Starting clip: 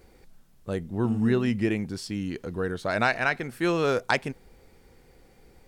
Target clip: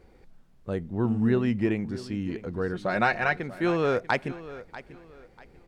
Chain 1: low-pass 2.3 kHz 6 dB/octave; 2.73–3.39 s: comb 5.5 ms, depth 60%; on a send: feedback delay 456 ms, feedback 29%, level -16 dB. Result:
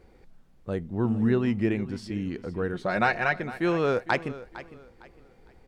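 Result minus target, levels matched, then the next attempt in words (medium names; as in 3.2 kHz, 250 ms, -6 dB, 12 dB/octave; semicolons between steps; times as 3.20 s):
echo 185 ms early
low-pass 2.3 kHz 6 dB/octave; 2.73–3.39 s: comb 5.5 ms, depth 60%; on a send: feedback delay 641 ms, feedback 29%, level -16 dB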